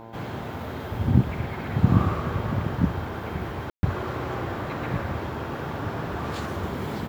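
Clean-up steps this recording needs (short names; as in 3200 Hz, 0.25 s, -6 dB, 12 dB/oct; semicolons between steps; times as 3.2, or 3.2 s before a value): de-hum 113.4 Hz, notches 9; room tone fill 3.7–3.83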